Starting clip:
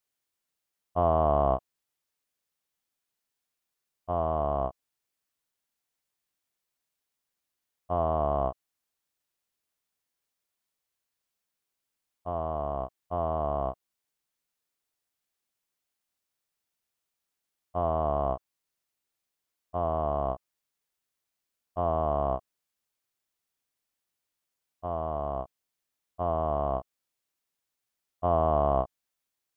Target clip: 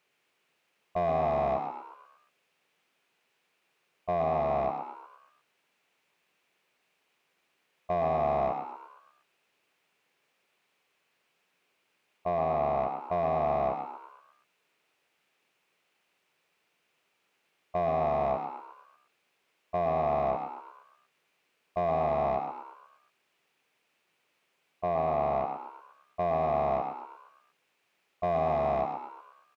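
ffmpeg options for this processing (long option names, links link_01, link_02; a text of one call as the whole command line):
ffmpeg -i in.wav -filter_complex "[0:a]equalizer=frequency=160:width_type=o:width=0.67:gain=9,equalizer=frequency=400:width_type=o:width=0.67:gain=6,equalizer=frequency=2500:width_type=o:width=0.67:gain=9,acompressor=threshold=-30dB:ratio=2,asplit=2[link_01][link_02];[link_02]highpass=frequency=720:poles=1,volume=24dB,asoftclip=type=tanh:threshold=-12dB[link_03];[link_01][link_03]amix=inputs=2:normalize=0,lowpass=frequency=1100:poles=1,volume=-6dB,alimiter=limit=-21dB:level=0:latency=1:release=23,asplit=2[link_04][link_05];[link_05]asplit=6[link_06][link_07][link_08][link_09][link_10][link_11];[link_06]adelay=117,afreqshift=89,volume=-7dB[link_12];[link_07]adelay=234,afreqshift=178,volume=-13.6dB[link_13];[link_08]adelay=351,afreqshift=267,volume=-20.1dB[link_14];[link_09]adelay=468,afreqshift=356,volume=-26.7dB[link_15];[link_10]adelay=585,afreqshift=445,volume=-33.2dB[link_16];[link_11]adelay=702,afreqshift=534,volume=-39.8dB[link_17];[link_12][link_13][link_14][link_15][link_16][link_17]amix=inputs=6:normalize=0[link_18];[link_04][link_18]amix=inputs=2:normalize=0" out.wav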